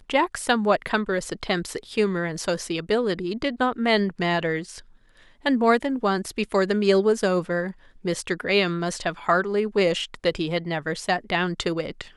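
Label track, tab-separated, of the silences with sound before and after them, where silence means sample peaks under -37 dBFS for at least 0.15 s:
4.800000	5.450000	silence
7.720000	8.050000	silence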